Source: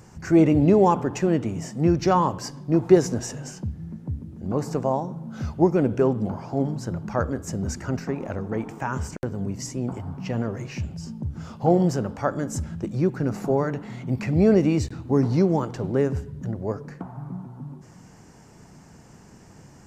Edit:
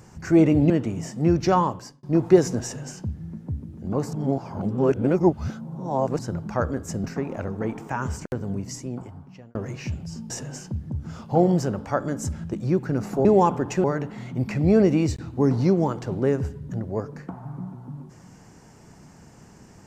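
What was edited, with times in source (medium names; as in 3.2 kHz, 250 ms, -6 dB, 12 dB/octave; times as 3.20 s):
0.70–1.29 s: move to 13.56 s
2.17–2.62 s: fade out
3.22–3.82 s: copy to 11.21 s
4.72–6.78 s: reverse
7.63–7.95 s: delete
9.43–10.46 s: fade out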